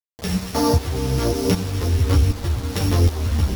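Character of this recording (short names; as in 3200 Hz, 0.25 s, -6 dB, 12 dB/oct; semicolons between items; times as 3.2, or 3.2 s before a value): a buzz of ramps at a fixed pitch in blocks of 8 samples; tremolo saw up 1.3 Hz, depth 80%; a quantiser's noise floor 6-bit, dither none; a shimmering, thickened sound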